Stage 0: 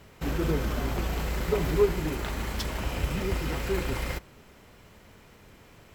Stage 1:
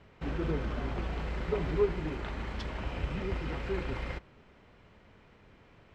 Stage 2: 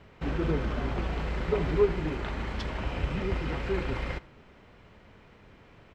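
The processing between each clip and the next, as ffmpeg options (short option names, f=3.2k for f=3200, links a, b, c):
-af "lowpass=3.3k,volume=-5dB"
-af "aecho=1:1:78:0.0841,volume=4dB"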